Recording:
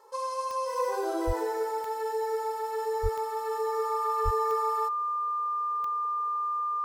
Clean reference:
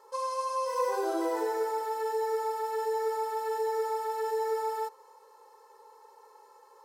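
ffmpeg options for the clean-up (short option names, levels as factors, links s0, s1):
-filter_complex "[0:a]adeclick=t=4,bandreject=f=1200:w=30,asplit=3[s0][s1][s2];[s0]afade=t=out:st=1.26:d=0.02[s3];[s1]highpass=f=140:w=0.5412,highpass=f=140:w=1.3066,afade=t=in:st=1.26:d=0.02,afade=t=out:st=1.38:d=0.02[s4];[s2]afade=t=in:st=1.38:d=0.02[s5];[s3][s4][s5]amix=inputs=3:normalize=0,asplit=3[s6][s7][s8];[s6]afade=t=out:st=3.02:d=0.02[s9];[s7]highpass=f=140:w=0.5412,highpass=f=140:w=1.3066,afade=t=in:st=3.02:d=0.02,afade=t=out:st=3.14:d=0.02[s10];[s8]afade=t=in:st=3.14:d=0.02[s11];[s9][s10][s11]amix=inputs=3:normalize=0,asplit=3[s12][s13][s14];[s12]afade=t=out:st=4.24:d=0.02[s15];[s13]highpass=f=140:w=0.5412,highpass=f=140:w=1.3066,afade=t=in:st=4.24:d=0.02,afade=t=out:st=4.36:d=0.02[s16];[s14]afade=t=in:st=4.36:d=0.02[s17];[s15][s16][s17]amix=inputs=3:normalize=0"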